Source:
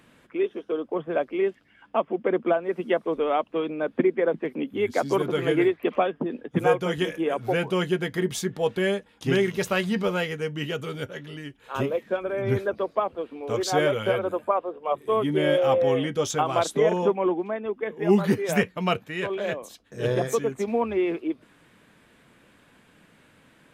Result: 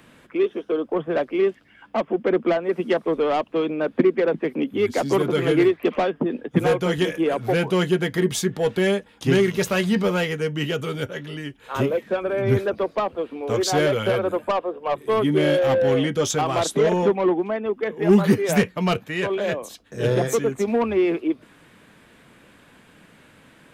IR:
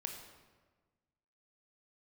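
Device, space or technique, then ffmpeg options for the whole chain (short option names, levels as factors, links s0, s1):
one-band saturation: -filter_complex "[0:a]acrossover=split=360|4200[s0][s1][s2];[s1]asoftclip=type=tanh:threshold=0.0631[s3];[s0][s3][s2]amix=inputs=3:normalize=0,volume=1.88"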